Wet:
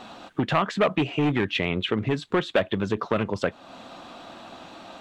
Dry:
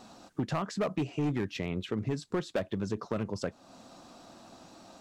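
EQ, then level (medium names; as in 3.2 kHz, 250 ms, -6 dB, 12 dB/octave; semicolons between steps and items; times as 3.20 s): FFT filter 170 Hz 0 dB, 3.4 kHz +10 dB, 5.1 kHz -5 dB; +5.5 dB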